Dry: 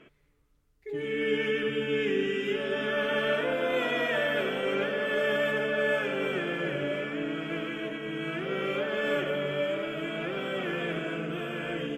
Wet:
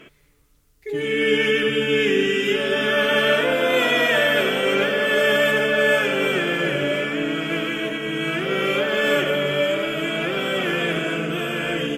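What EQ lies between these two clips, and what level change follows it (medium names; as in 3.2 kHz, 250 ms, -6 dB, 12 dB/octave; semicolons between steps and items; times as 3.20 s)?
treble shelf 3.5 kHz +11 dB; +8.0 dB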